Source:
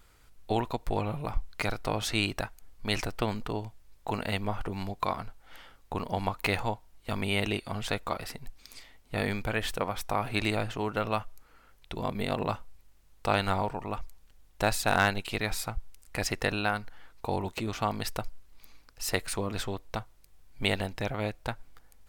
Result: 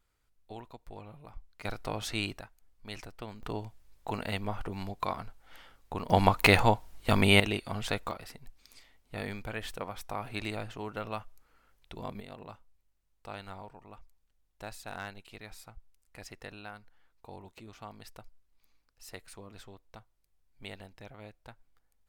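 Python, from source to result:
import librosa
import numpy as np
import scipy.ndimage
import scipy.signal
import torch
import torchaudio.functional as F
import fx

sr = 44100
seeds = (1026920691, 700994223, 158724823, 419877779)

y = fx.gain(x, sr, db=fx.steps((0.0, -16.5), (1.65, -5.0), (2.38, -13.0), (3.43, -3.0), (6.1, 7.5), (7.4, -1.0), (8.11, -7.5), (12.2, -16.5)))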